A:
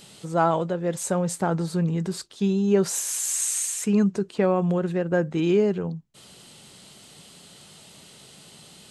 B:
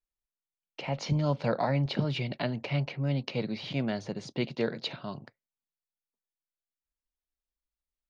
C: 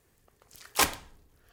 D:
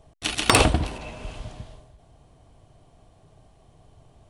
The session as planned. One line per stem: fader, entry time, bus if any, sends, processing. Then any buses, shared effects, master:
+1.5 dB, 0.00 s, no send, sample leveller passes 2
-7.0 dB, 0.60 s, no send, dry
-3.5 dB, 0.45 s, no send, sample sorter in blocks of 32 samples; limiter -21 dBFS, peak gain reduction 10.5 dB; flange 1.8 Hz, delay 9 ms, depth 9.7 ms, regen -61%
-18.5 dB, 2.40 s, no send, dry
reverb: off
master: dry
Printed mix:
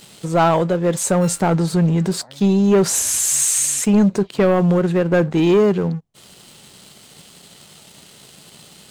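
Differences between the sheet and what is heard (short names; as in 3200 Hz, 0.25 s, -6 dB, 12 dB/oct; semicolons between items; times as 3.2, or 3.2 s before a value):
stem B -7.0 dB -> -18.0 dB; stem D -18.5 dB -> -27.5 dB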